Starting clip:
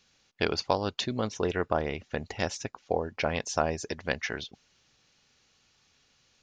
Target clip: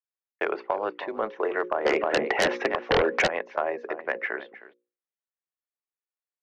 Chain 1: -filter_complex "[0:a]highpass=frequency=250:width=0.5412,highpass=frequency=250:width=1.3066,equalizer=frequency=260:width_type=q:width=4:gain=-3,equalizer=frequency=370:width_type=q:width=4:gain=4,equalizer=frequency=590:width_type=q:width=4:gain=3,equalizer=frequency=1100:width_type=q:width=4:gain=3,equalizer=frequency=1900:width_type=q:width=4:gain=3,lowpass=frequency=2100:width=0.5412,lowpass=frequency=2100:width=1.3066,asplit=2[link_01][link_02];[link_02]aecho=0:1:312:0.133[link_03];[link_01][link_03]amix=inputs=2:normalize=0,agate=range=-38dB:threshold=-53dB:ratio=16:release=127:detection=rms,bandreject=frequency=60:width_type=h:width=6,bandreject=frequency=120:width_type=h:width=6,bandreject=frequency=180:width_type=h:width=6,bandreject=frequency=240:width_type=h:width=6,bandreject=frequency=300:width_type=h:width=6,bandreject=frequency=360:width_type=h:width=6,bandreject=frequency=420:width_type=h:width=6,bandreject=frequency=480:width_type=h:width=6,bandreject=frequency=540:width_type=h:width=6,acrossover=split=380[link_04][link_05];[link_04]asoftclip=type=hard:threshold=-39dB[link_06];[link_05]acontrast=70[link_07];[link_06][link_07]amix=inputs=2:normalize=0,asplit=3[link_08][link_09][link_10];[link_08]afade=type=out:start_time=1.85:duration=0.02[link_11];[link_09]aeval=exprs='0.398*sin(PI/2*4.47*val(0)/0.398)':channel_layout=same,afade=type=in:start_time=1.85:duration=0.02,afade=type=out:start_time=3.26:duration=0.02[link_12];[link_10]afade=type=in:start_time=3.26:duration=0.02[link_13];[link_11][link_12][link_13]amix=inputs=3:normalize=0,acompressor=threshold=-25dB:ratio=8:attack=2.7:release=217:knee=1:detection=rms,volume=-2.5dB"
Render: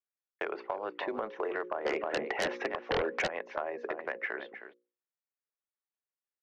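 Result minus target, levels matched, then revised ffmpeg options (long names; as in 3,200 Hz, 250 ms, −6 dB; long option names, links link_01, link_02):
downward compressor: peak gain reduction +9 dB
-filter_complex "[0:a]highpass=frequency=250:width=0.5412,highpass=frequency=250:width=1.3066,equalizer=frequency=260:width_type=q:width=4:gain=-3,equalizer=frequency=370:width_type=q:width=4:gain=4,equalizer=frequency=590:width_type=q:width=4:gain=3,equalizer=frequency=1100:width_type=q:width=4:gain=3,equalizer=frequency=1900:width_type=q:width=4:gain=3,lowpass=frequency=2100:width=0.5412,lowpass=frequency=2100:width=1.3066,asplit=2[link_01][link_02];[link_02]aecho=0:1:312:0.133[link_03];[link_01][link_03]amix=inputs=2:normalize=0,agate=range=-38dB:threshold=-53dB:ratio=16:release=127:detection=rms,bandreject=frequency=60:width_type=h:width=6,bandreject=frequency=120:width_type=h:width=6,bandreject=frequency=180:width_type=h:width=6,bandreject=frequency=240:width_type=h:width=6,bandreject=frequency=300:width_type=h:width=6,bandreject=frequency=360:width_type=h:width=6,bandreject=frequency=420:width_type=h:width=6,bandreject=frequency=480:width_type=h:width=6,bandreject=frequency=540:width_type=h:width=6,acrossover=split=380[link_04][link_05];[link_04]asoftclip=type=hard:threshold=-39dB[link_06];[link_05]acontrast=70[link_07];[link_06][link_07]amix=inputs=2:normalize=0,asplit=3[link_08][link_09][link_10];[link_08]afade=type=out:start_time=1.85:duration=0.02[link_11];[link_09]aeval=exprs='0.398*sin(PI/2*4.47*val(0)/0.398)':channel_layout=same,afade=type=in:start_time=1.85:duration=0.02,afade=type=out:start_time=3.26:duration=0.02[link_12];[link_10]afade=type=in:start_time=3.26:duration=0.02[link_13];[link_11][link_12][link_13]amix=inputs=3:normalize=0,acompressor=threshold=-15dB:ratio=8:attack=2.7:release=217:knee=1:detection=rms,volume=-2.5dB"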